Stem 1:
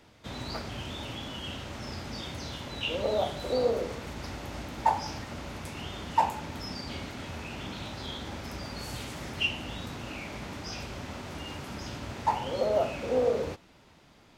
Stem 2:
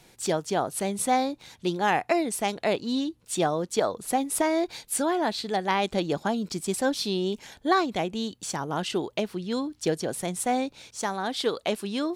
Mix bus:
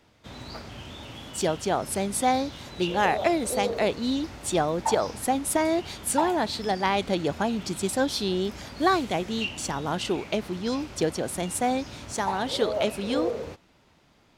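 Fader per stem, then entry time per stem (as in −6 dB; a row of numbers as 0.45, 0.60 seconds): −3.0, +0.5 decibels; 0.00, 1.15 seconds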